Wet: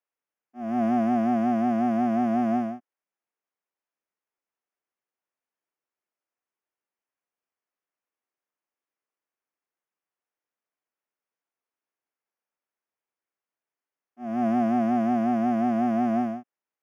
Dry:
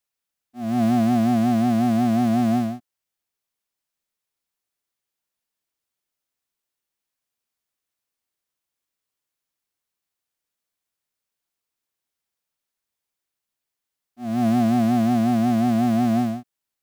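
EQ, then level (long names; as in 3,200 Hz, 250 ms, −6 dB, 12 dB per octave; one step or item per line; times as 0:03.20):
moving average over 11 samples
high-pass filter 280 Hz 12 dB per octave
0.0 dB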